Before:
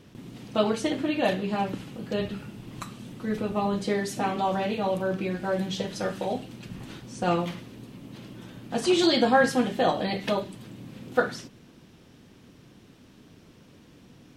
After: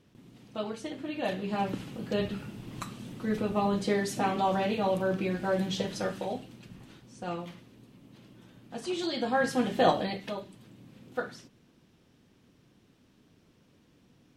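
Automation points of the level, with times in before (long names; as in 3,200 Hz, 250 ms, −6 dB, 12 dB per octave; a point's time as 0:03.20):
0:00.96 −11 dB
0:01.73 −1 dB
0:05.89 −1 dB
0:06.93 −11 dB
0:09.12 −11 dB
0:09.89 +1 dB
0:10.27 −10 dB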